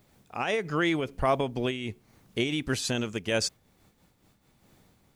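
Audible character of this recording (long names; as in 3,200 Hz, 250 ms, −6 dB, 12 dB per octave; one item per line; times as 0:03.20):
a quantiser's noise floor 12 bits, dither triangular
amplitude modulation by smooth noise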